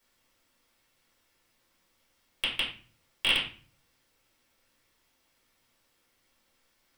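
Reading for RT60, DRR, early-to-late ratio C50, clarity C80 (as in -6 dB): 0.40 s, -7.5 dB, 6.5 dB, 11.0 dB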